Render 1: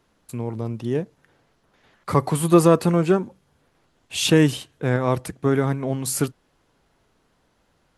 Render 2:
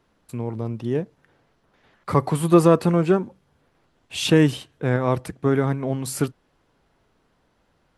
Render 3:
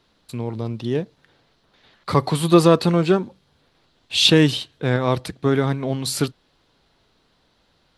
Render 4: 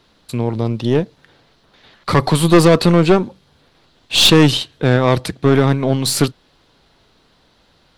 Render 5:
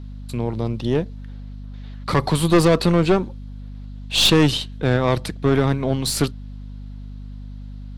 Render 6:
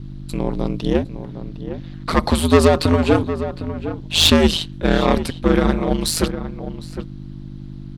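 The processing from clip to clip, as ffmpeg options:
ffmpeg -i in.wav -af "highshelf=frequency=4800:gain=-6.5,bandreject=frequency=6700:width=28" out.wav
ffmpeg -i in.wav -af "equalizer=frequency=4000:width=1.5:gain=13,volume=1dB" out.wav
ffmpeg -i in.wav -af "aeval=exprs='(tanh(5.01*val(0)+0.45)-tanh(0.45))/5.01':channel_layout=same,volume=9dB" out.wav
ffmpeg -i in.wav -af "aeval=exprs='val(0)+0.0398*(sin(2*PI*50*n/s)+sin(2*PI*2*50*n/s)/2+sin(2*PI*3*50*n/s)/3+sin(2*PI*4*50*n/s)/4+sin(2*PI*5*50*n/s)/5)':channel_layout=same,volume=-5dB" out.wav
ffmpeg -i in.wav -filter_complex "[0:a]aeval=exprs='val(0)*sin(2*PI*81*n/s)':channel_layout=same,asplit=2[link_01][link_02];[link_02]adelay=758,volume=-11dB,highshelf=frequency=4000:gain=-17.1[link_03];[link_01][link_03]amix=inputs=2:normalize=0,volume=5dB" out.wav

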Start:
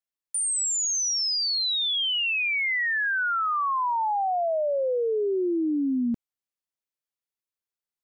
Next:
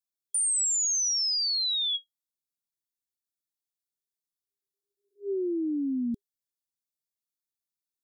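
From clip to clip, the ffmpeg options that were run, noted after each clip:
ffmpeg -i in.wav -af "afftfilt=real='re*(1-between(b*sr/4096,400,3300))':imag='im*(1-between(b*sr/4096,400,3300))':win_size=4096:overlap=0.75,highshelf=frequency=5100:gain=5.5,volume=-4dB" out.wav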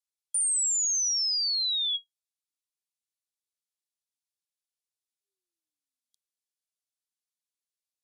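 ffmpeg -i in.wav -af "asuperpass=centerf=5900:order=8:qfactor=0.62" out.wav

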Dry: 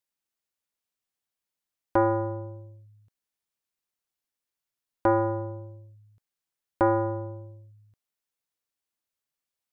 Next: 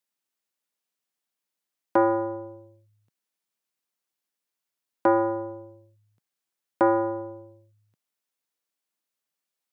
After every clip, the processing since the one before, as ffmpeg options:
ffmpeg -i in.wav -af "highpass=frequency=150:width=0.5412,highpass=frequency=150:width=1.3066,volume=2dB" out.wav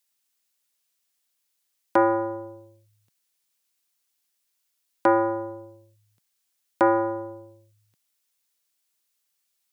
ffmpeg -i in.wav -af "highshelf=frequency=2100:gain=11.5" out.wav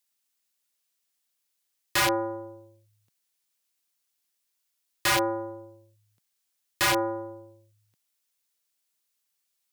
ffmpeg -i in.wav -af "aeval=exprs='(mod(5.31*val(0)+1,2)-1)/5.31':channel_layout=same,volume=-2.5dB" out.wav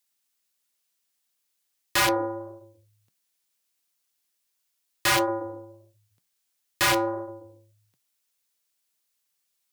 ffmpeg -i in.wav -af "flanger=delay=3.9:depth=6:regen=-78:speed=1.5:shape=sinusoidal,volume=6dB" out.wav

